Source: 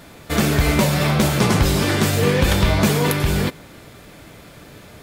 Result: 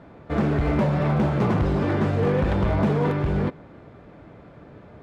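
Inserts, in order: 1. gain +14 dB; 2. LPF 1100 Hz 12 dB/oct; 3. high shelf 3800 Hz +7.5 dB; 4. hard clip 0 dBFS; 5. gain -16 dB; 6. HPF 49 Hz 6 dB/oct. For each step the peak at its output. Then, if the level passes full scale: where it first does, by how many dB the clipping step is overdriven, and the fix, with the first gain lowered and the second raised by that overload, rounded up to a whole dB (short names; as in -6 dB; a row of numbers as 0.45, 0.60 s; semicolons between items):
+10.0, +8.0, +8.0, 0.0, -16.0, -12.5 dBFS; step 1, 8.0 dB; step 1 +6 dB, step 5 -8 dB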